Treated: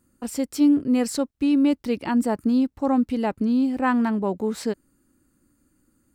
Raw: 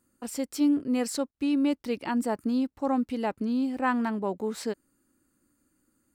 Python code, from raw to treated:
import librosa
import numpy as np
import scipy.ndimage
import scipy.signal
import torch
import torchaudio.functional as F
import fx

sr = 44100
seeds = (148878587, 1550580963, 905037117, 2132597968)

y = fx.low_shelf(x, sr, hz=210.0, db=8.5)
y = F.gain(torch.from_numpy(y), 3.0).numpy()